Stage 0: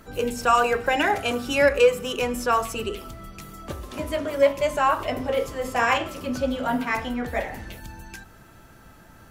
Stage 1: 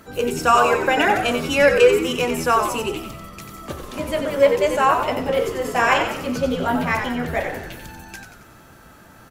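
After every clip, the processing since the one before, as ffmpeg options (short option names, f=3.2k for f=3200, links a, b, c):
-filter_complex "[0:a]highpass=f=100:p=1,asplit=7[a][b][c][d][e][f][g];[b]adelay=91,afreqshift=-82,volume=-7dB[h];[c]adelay=182,afreqshift=-164,volume=-13dB[i];[d]adelay=273,afreqshift=-246,volume=-19dB[j];[e]adelay=364,afreqshift=-328,volume=-25.1dB[k];[f]adelay=455,afreqshift=-410,volume=-31.1dB[l];[g]adelay=546,afreqshift=-492,volume=-37.1dB[m];[a][h][i][j][k][l][m]amix=inputs=7:normalize=0,volume=3.5dB"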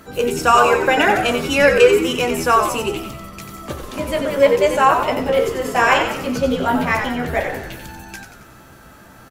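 -filter_complex "[0:a]asplit=2[a][b];[b]adelay=15,volume=-11dB[c];[a][c]amix=inputs=2:normalize=0,volume=2.5dB"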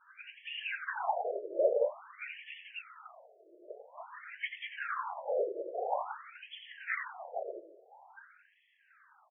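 -af "afftfilt=real='hypot(re,im)*cos(2*PI*random(0))':imag='hypot(re,im)*sin(2*PI*random(1))':win_size=512:overlap=0.75,aeval=exprs='val(0)+0.0224*sin(2*PI*10000*n/s)':c=same,afftfilt=real='re*between(b*sr/1024,460*pow(2500/460,0.5+0.5*sin(2*PI*0.49*pts/sr))/1.41,460*pow(2500/460,0.5+0.5*sin(2*PI*0.49*pts/sr))*1.41)':imag='im*between(b*sr/1024,460*pow(2500/460,0.5+0.5*sin(2*PI*0.49*pts/sr))/1.41,460*pow(2500/460,0.5+0.5*sin(2*PI*0.49*pts/sr))*1.41)':win_size=1024:overlap=0.75,volume=-8dB"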